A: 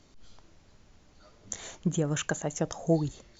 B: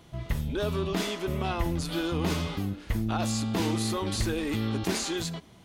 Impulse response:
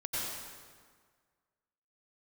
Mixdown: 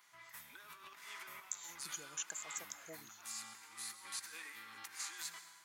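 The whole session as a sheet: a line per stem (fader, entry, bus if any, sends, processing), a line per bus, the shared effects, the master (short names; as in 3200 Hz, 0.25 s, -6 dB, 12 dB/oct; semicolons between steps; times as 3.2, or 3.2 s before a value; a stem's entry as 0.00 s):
-4.5 dB, 0.00 s, no send, vibrato 0.89 Hz 80 cents
-11.0 dB, 0.00 s, send -12 dB, band shelf 1400 Hz +15 dB; negative-ratio compressor -28 dBFS, ratio -0.5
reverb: on, RT60 1.7 s, pre-delay 83 ms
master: HPF 62 Hz; differentiator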